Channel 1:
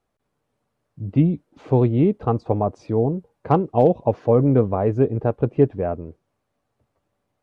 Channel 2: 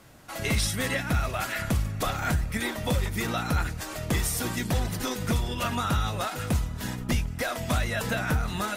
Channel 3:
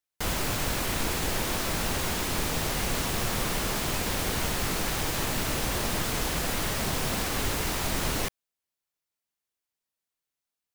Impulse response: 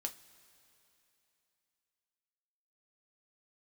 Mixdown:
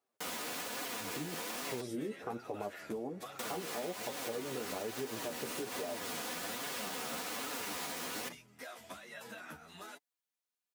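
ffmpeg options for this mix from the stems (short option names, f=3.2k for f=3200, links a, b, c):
-filter_complex "[0:a]alimiter=limit=-12.5dB:level=0:latency=1:release=30,volume=-8.5dB,asplit=2[a][b];[b]volume=-3.5dB[c];[1:a]acompressor=threshold=-28dB:ratio=4,asplit=2[d][e];[e]adelay=10.4,afreqshift=0.49[f];[d][f]amix=inputs=2:normalize=1,adelay=1200,volume=-8dB[g];[2:a]aecho=1:1:4.1:0.46,volume=-2dB,asplit=3[h][i][j];[h]atrim=end=1.81,asetpts=PTS-STARTPTS,afade=t=out:st=1.806:d=0.004:c=hsin[k];[i]atrim=start=1.81:end=3.39,asetpts=PTS-STARTPTS,volume=0[l];[j]atrim=start=3.39,asetpts=PTS-STARTPTS,afade=t=in:d=0.004:c=hsin[m];[k][l][m]concat=n=3:v=0:a=1[n];[a][n]amix=inputs=2:normalize=0,alimiter=limit=-22dB:level=0:latency=1:release=216,volume=0dB[o];[3:a]atrim=start_sample=2205[p];[c][p]afir=irnorm=-1:irlink=0[q];[g][o][q]amix=inputs=3:normalize=0,highpass=290,flanger=delay=6.6:depth=7.3:regen=22:speed=1.2:shape=triangular,acompressor=threshold=-36dB:ratio=5"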